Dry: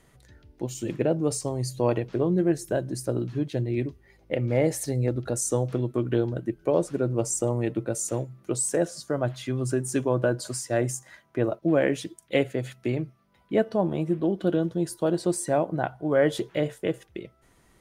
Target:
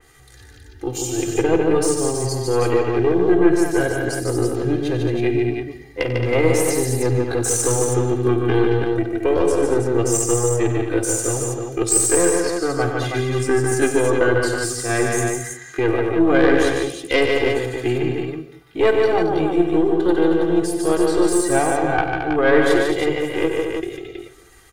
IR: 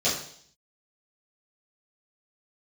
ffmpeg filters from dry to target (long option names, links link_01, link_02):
-filter_complex "[0:a]equalizer=frequency=1500:width=1.4:gain=6,aecho=1:1:2.5:0.99,aeval=exprs='(tanh(3.98*val(0)+0.6)-tanh(0.6))/3.98':channel_layout=same,acrossover=split=2700[link_01][link_02];[link_02]acontrast=89[link_03];[link_01][link_03]amix=inputs=2:normalize=0,atempo=0.72,aecho=1:1:52|93|148|221|322:0.2|0.266|0.631|0.422|0.531,asplit=2[link_04][link_05];[1:a]atrim=start_sample=2205,adelay=132[link_06];[link_05][link_06]afir=irnorm=-1:irlink=0,volume=-28.5dB[link_07];[link_04][link_07]amix=inputs=2:normalize=0,adynamicequalizer=threshold=0.00794:dfrequency=3000:dqfactor=0.7:tfrequency=3000:tqfactor=0.7:attack=5:release=100:ratio=0.375:range=3.5:mode=cutabove:tftype=highshelf,volume=5dB"